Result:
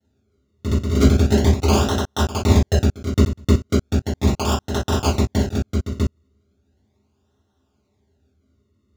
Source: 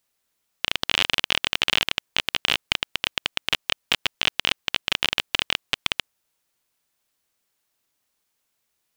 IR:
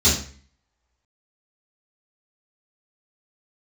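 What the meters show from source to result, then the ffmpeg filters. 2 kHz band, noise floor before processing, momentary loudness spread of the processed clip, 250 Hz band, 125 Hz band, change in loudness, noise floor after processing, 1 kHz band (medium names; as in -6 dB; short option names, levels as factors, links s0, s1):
-8.5 dB, -76 dBFS, 8 LU, +22.0 dB, +27.0 dB, +4.0 dB, -68 dBFS, +6.0 dB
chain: -filter_complex "[0:a]acrusher=samples=37:mix=1:aa=0.000001:lfo=1:lforange=37:lforate=0.37,asoftclip=type=hard:threshold=0.501[s0];[1:a]atrim=start_sample=2205,atrim=end_sample=3087[s1];[s0][s1]afir=irnorm=-1:irlink=0,volume=0.2"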